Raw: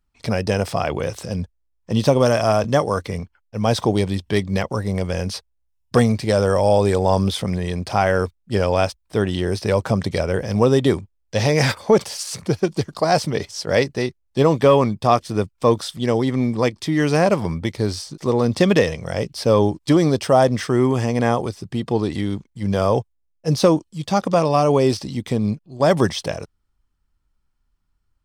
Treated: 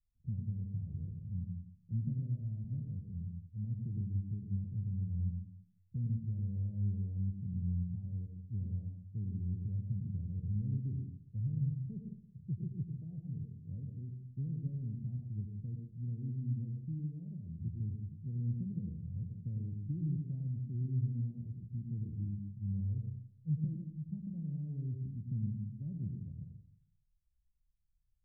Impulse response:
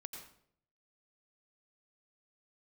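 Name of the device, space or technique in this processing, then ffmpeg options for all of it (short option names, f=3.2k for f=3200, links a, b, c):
club heard from the street: -filter_complex "[0:a]alimiter=limit=-8dB:level=0:latency=1:release=294,lowpass=f=160:w=0.5412,lowpass=f=160:w=1.3066[a];[1:a]atrim=start_sample=2205[b];[a][b]afir=irnorm=-1:irlink=0,asplit=3[c][d][e];[c]afade=t=out:st=17.05:d=0.02[f];[d]lowshelf=f=450:g=-6.5,afade=t=in:st=17.05:d=0.02,afade=t=out:st=17.6:d=0.02[g];[e]afade=t=in:st=17.6:d=0.02[h];[f][g][h]amix=inputs=3:normalize=0,volume=-5.5dB"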